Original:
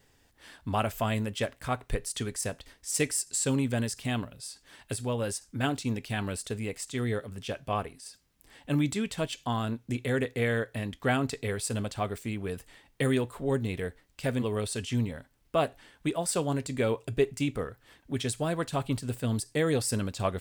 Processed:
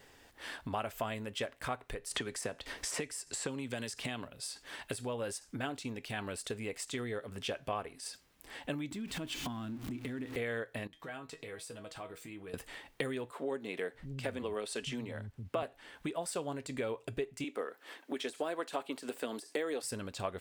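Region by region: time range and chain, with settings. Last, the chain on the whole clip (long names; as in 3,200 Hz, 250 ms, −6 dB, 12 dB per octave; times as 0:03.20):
0:02.11–0:04.28: high-shelf EQ 10,000 Hz −6.5 dB + multiband upward and downward compressor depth 100%
0:08.91–0:10.36: converter with a step at zero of −38 dBFS + low shelf with overshoot 380 Hz +7 dB, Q 3 + downward compressor 3 to 1, threshold −33 dBFS
0:10.87–0:12.54: downward compressor, threshold −40 dBFS + tuned comb filter 160 Hz, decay 0.17 s, mix 80%
0:13.31–0:15.63: high-shelf EQ 12,000 Hz −6.5 dB + multiband delay without the direct sound highs, lows 630 ms, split 180 Hz
0:17.44–0:19.83: de-essing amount 85% + high-pass filter 260 Hz 24 dB per octave
whole clip: downward compressor 6 to 1, threshold −41 dBFS; bass and treble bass −9 dB, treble −5 dB; level +8 dB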